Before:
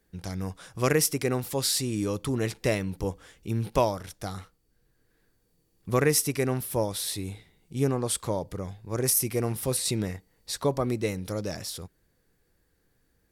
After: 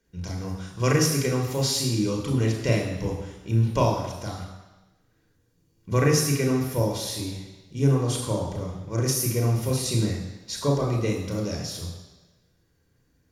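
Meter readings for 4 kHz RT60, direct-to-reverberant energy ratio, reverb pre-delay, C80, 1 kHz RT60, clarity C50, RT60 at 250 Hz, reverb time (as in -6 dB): 1.2 s, 0.5 dB, 31 ms, 7.0 dB, 1.1 s, 4.5 dB, 1.0 s, 1.1 s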